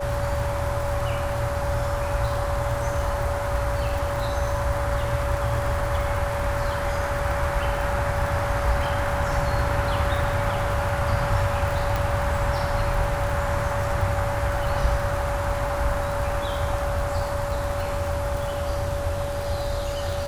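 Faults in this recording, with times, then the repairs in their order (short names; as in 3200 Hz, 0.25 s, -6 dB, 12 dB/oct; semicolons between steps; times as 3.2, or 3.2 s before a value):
crackle 58/s -29 dBFS
tone 570 Hz -28 dBFS
11.96 pop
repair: de-click; notch 570 Hz, Q 30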